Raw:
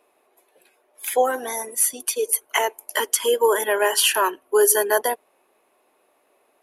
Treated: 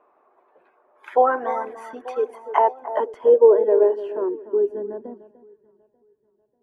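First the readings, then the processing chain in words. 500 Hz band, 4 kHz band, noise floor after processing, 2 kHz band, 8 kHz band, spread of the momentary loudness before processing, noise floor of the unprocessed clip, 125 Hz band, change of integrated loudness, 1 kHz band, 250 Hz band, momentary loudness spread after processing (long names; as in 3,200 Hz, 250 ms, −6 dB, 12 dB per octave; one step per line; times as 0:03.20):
+3.5 dB, below −25 dB, −67 dBFS, −11.5 dB, below −40 dB, 10 LU, −65 dBFS, can't be measured, +0.5 dB, +1.5 dB, +3.5 dB, 17 LU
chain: delay that swaps between a low-pass and a high-pass 296 ms, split 1,800 Hz, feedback 71%, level −12 dB
low-pass filter sweep 1,200 Hz → 130 Hz, 0:02.10–0:05.93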